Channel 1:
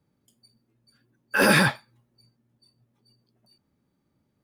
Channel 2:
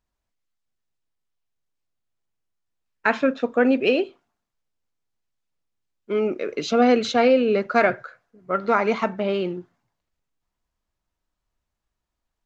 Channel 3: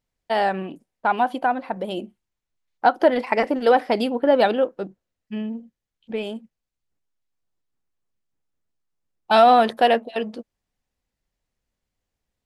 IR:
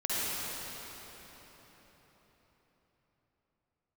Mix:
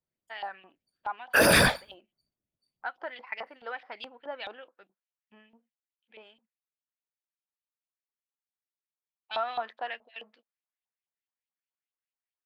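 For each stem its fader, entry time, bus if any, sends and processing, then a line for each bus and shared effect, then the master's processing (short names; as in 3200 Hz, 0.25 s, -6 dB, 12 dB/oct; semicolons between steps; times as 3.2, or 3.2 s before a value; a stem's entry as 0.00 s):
+0.5 dB, 0.00 s, bus A, no send, gate -51 dBFS, range -24 dB; bell 590 Hz +9.5 dB 0.38 oct
off
-10.5 dB, 0.00 s, no bus, no send, LPF 4800 Hz; LFO band-pass saw up 4.7 Hz 840–3300 Hz
bus A: 0.0 dB, whisperiser; limiter -12.5 dBFS, peak gain reduction 9 dB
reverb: off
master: high shelf 2600 Hz +7.5 dB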